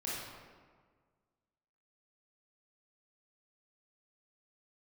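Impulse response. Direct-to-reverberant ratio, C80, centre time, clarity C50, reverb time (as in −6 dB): −7.5 dB, 0.5 dB, 106 ms, −2.5 dB, 1.6 s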